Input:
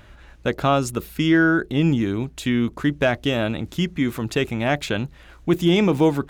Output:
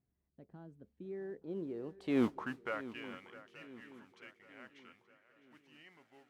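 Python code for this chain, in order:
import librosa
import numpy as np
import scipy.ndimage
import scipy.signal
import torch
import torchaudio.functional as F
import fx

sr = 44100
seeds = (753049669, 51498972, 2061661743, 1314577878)

p1 = fx.doppler_pass(x, sr, speed_mps=54, closest_m=3.7, pass_at_s=2.23)
p2 = fx.mod_noise(p1, sr, seeds[0], snr_db=20)
p3 = fx.filter_sweep_bandpass(p2, sr, from_hz=200.0, to_hz=1800.0, start_s=0.88, end_s=3.11, q=1.1)
p4 = p3 + fx.echo_swing(p3, sr, ms=876, ratio=3, feedback_pct=45, wet_db=-16.5, dry=0)
y = p4 * librosa.db_to_amplitude(1.5)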